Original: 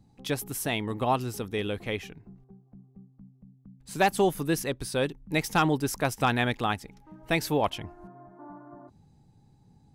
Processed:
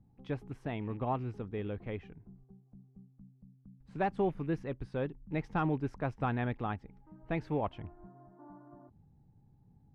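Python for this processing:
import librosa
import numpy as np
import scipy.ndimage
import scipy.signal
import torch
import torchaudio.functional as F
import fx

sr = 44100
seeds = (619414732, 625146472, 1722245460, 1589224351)

y = fx.rattle_buzz(x, sr, strikes_db=-36.0, level_db=-36.0)
y = scipy.signal.sosfilt(scipy.signal.butter(2, 1700.0, 'lowpass', fs=sr, output='sos'), y)
y = fx.low_shelf(y, sr, hz=200.0, db=7.5)
y = F.gain(torch.from_numpy(y), -9.0).numpy()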